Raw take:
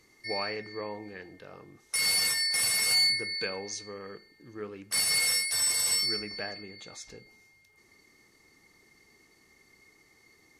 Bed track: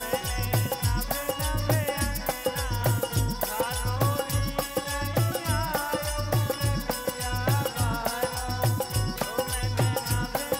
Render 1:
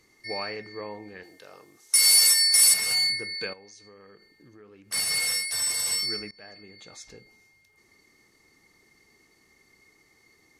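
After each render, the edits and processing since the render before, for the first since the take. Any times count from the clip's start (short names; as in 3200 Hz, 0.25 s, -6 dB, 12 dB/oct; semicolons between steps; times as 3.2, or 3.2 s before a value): 1.23–2.74 tone controls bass -12 dB, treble +12 dB; 3.53–4.88 compressor 4:1, threshold -49 dBFS; 6.31–7.15 fade in equal-power, from -23.5 dB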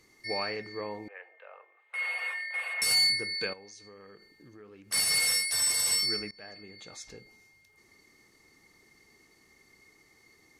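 1.08–2.82 elliptic band-pass 530–2600 Hz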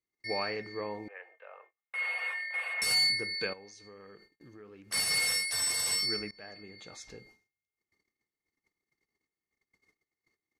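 gate -57 dBFS, range -32 dB; high shelf 5600 Hz -6 dB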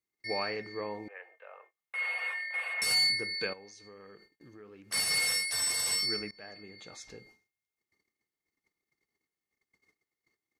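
low shelf 68 Hz -5 dB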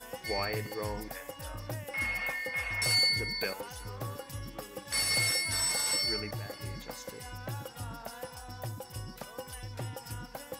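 add bed track -14.5 dB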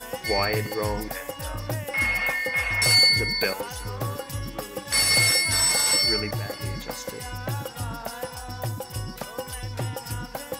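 gain +9 dB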